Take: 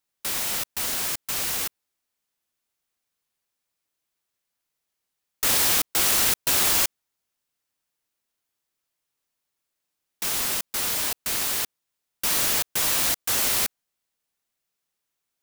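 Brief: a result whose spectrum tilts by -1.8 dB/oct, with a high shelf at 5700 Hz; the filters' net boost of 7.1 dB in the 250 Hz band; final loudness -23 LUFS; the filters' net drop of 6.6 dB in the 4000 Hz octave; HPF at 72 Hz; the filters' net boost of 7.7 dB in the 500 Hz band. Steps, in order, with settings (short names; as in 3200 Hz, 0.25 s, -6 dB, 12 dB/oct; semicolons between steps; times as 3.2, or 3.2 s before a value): HPF 72 Hz; bell 250 Hz +6.5 dB; bell 500 Hz +8 dB; bell 4000 Hz -6.5 dB; high shelf 5700 Hz -5.5 dB; gain +3.5 dB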